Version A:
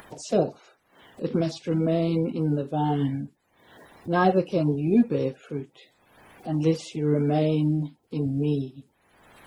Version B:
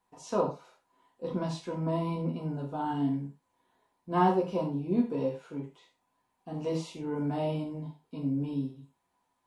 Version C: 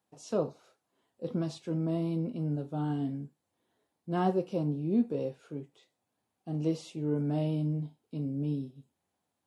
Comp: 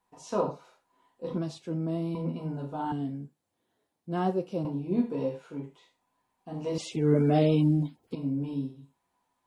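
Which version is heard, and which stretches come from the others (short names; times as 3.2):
B
1.38–2.15 from C
2.92–4.65 from C
6.78–8.15 from A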